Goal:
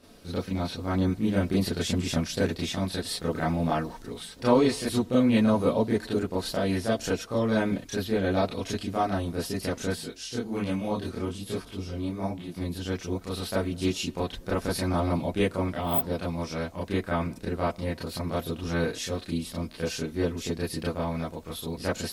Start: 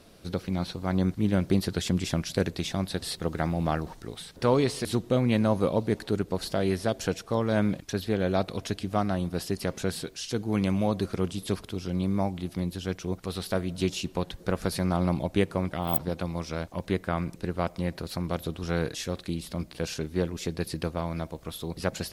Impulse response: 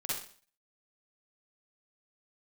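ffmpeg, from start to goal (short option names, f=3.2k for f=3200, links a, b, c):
-filter_complex "[0:a]asettb=1/sr,asplit=3[a][b][c];[a]atrim=end=9.924[d];[b]atrim=start=9.92:end=12.58,asetpts=PTS-STARTPTS,afade=t=in:d=0.004:c=qsin,afade=t=out:st=2.656:d=0.004:c=qsin,flanger=delay=17:depth=7.9:speed=1.2[e];[c]atrim=start=12.576[f];[d][e]acrossfade=d=0.004:c1=hsin:c2=qsin[g];[g][f]acrossfade=d=0.004:c1=qsin:c2=hsin[h];[1:a]atrim=start_sample=2205,atrim=end_sample=3528,asetrate=74970,aresample=44100[i];[h][i]afir=irnorm=-1:irlink=0,volume=4dB"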